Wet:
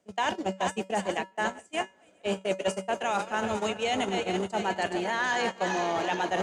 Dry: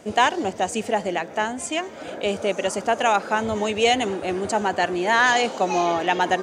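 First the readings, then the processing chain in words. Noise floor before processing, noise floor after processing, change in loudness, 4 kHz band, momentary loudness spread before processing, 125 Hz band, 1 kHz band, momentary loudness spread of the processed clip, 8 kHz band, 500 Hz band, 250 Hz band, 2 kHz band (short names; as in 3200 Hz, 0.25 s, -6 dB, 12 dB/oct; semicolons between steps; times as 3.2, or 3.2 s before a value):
-38 dBFS, -60 dBFS, -7.5 dB, -7.5 dB, 8 LU, -4.0 dB, -8.0 dB, 4 LU, -8.5 dB, -7.0 dB, -6.0 dB, -8.0 dB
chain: regenerating reverse delay 0.212 s, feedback 73%, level -9.5 dB; in parallel at +3 dB: limiter -14.5 dBFS, peak gain reduction 11 dB; on the sum: gate -15 dBFS, range -37 dB; reverse; compressor, threshold -23 dBFS, peak gain reduction 13.5 dB; reverse; resonator 190 Hz, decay 0.25 s, harmonics odd, mix 60%; three-band squash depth 40%; gain +4 dB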